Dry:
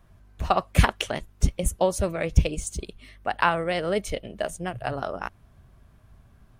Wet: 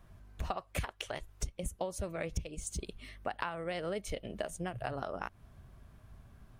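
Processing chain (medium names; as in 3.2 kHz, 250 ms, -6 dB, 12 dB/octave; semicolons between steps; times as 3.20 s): 0.56–1.48 s: peaking EQ 210 Hz -7 dB -> -14 dB 0.86 oct; compression 8:1, threshold -32 dBFS, peak gain reduction 20.5 dB; trim -1.5 dB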